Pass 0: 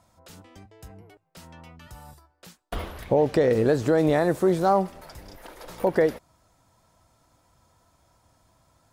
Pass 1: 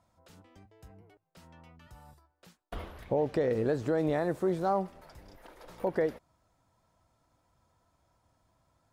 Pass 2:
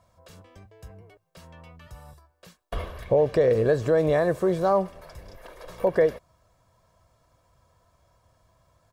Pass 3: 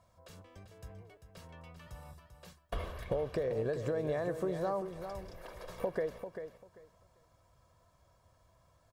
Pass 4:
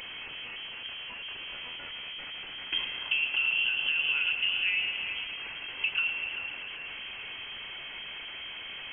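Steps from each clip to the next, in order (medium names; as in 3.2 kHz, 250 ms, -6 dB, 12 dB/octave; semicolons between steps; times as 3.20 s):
treble shelf 4.2 kHz -6.5 dB; trim -8 dB
comb 1.8 ms, depth 49%; trim +6.5 dB
compression 6:1, threshold -27 dBFS, peak gain reduction 11 dB; feedback delay 393 ms, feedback 19%, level -9 dB; trim -4.5 dB
one-bit delta coder 64 kbps, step -39.5 dBFS; feedback echo behind a band-pass 109 ms, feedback 72%, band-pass 680 Hz, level -6.5 dB; frequency inversion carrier 3.2 kHz; trim +4 dB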